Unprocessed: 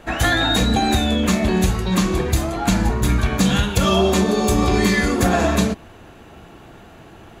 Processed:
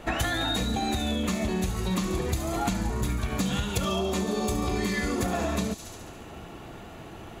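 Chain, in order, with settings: notch 1600 Hz, Q 13; thin delay 70 ms, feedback 68%, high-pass 5100 Hz, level -7 dB; compressor 12:1, threshold -24 dBFS, peak gain reduction 12.5 dB

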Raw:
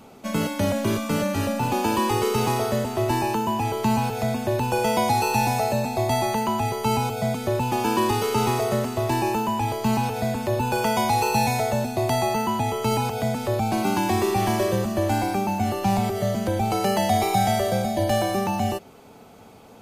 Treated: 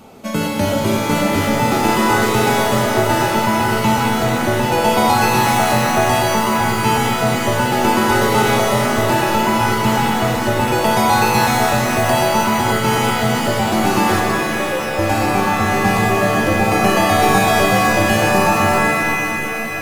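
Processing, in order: 14.2–14.99 vowel filter e; shimmer reverb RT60 3.8 s, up +7 st, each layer -2 dB, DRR 2 dB; gain +4.5 dB

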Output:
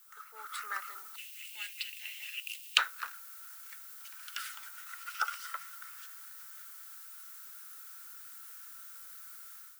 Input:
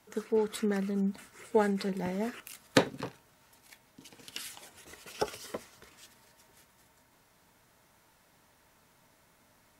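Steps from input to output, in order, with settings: added noise violet -47 dBFS; ladder high-pass 1200 Hz, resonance 80%, from 1.15 s 2600 Hz, from 2.77 s 1300 Hz; AGC gain up to 10 dB

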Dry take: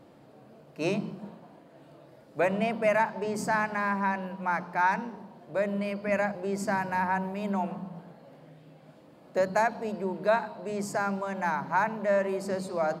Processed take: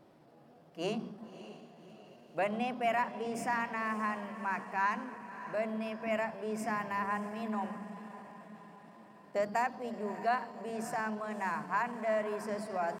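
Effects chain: diffused feedback echo 0.595 s, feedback 53%, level -13 dB; pitch shift +1.5 st; gain -6.5 dB

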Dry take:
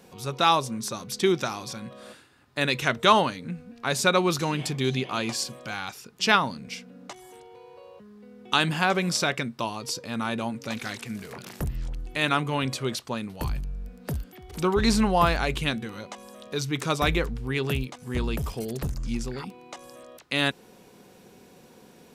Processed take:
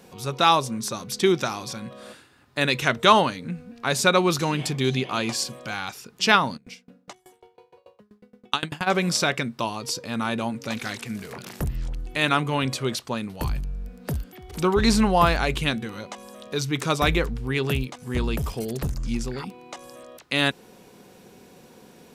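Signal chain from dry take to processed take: 6.56–8.86 dB-ramp tremolo decaying 4.2 Hz -> 12 Hz, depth 28 dB; gain +2.5 dB

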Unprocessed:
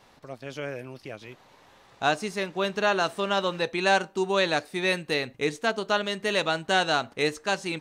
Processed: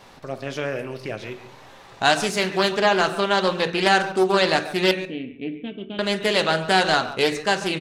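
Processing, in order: 4.91–5.99 vocal tract filter i; in parallel at -0.5 dB: compressor, threshold -35 dBFS, peak gain reduction 16.5 dB; 2.05–2.7 on the sum: high shelf 2700 Hz +7.5 dB; speakerphone echo 0.14 s, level -13 dB; on a send at -9 dB: reverb RT60 0.60 s, pre-delay 5 ms; on the sum: Doppler distortion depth 0.28 ms; gain +3 dB

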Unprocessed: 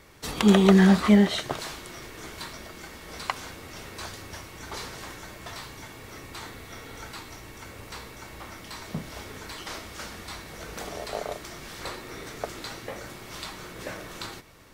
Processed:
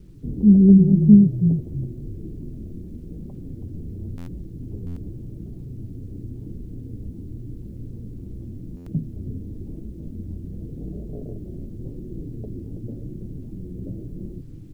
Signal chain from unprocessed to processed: inverse Chebyshev low-pass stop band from 1400 Hz, stop band 70 dB; low shelf 210 Hz +6 dB; in parallel at +1 dB: compressor 12:1, threshold -36 dBFS, peak gain reduction 25 dB; on the sum: flange 0.91 Hz, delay 4.9 ms, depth 6.9 ms, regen -21%; requantised 12-bit, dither none; on a send: frequency-shifting echo 0.326 s, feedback 31%, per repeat -36 Hz, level -8.5 dB; on the sum: stuck buffer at 4.17/4.86/8.76, samples 512; gain +5.5 dB

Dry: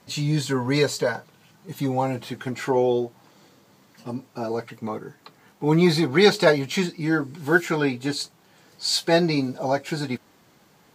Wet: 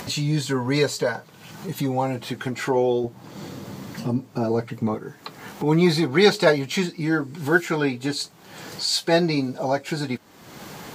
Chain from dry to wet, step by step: 3.04–4.95 low shelf 370 Hz +10.5 dB; upward compressor, threshold -22 dBFS

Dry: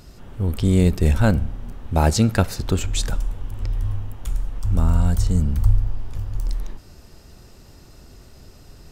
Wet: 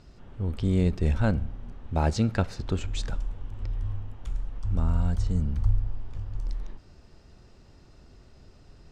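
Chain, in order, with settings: air absorption 94 m; gain -7 dB

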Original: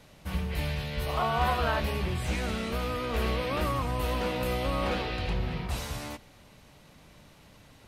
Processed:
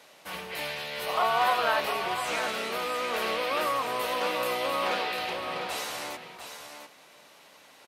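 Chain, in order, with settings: HPF 500 Hz 12 dB/oct; on a send: echo 0.698 s -8 dB; on the sum: gain +4 dB

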